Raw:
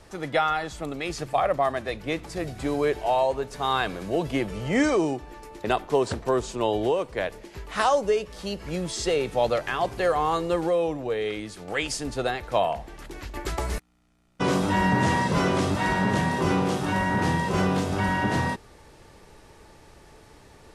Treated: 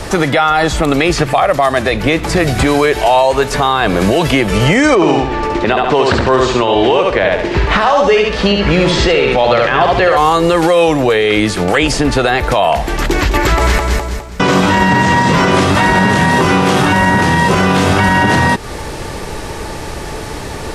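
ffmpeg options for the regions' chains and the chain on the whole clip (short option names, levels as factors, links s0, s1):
-filter_complex "[0:a]asettb=1/sr,asplit=3[s0][s1][s2];[s0]atrim=end=4.954[s3];[s1]atrim=start=4.95:end=10.17,asetpts=PTS-STARTPTS,afade=t=in:d=0.004:c=qsin,afade=t=out:st=5.216:d=0.004:c=qsin,lowpass=3500,aecho=1:1:69|138|207|276:0.596|0.185|0.0572|0.0177,atrim=end_sample=230202[s4];[s2]atrim=start=10.166[s5];[s3][s4]acrossfade=d=0.004:c1=hsin:c2=qsin[s6];[s6][s5]acrossfade=d=0.004:c1=qsin:c2=hsin,asettb=1/sr,asplit=3[s7][s8][s9];[s7]atrim=end=12.974[s10];[s8]atrim=start=12.97:end=15.51,asetpts=PTS-STARTPTS,afade=t=in:d=0.004:c=qsin,afade=t=out:st=2.536:d=0.004:c=qsin,equalizer=f=10000:t=o:w=0.21:g=-12.5,aecho=1:1:206|412|618|824:0.335|0.114|0.0387|0.0132,atrim=end_sample=112014[s11];[s9]atrim=start=15.506[s12];[s10][s11]acrossfade=d=0.004:c1=hsin:c2=qsin[s13];[s13][s12]acrossfade=d=0.004:c1=qsin:c2=hsin,acrossover=split=1100|3300[s14][s15][s16];[s14]acompressor=threshold=0.0158:ratio=4[s17];[s15]acompressor=threshold=0.01:ratio=4[s18];[s16]acompressor=threshold=0.00251:ratio=4[s19];[s17][s18][s19]amix=inputs=3:normalize=0,alimiter=level_in=25.1:limit=0.891:release=50:level=0:latency=1,volume=0.891"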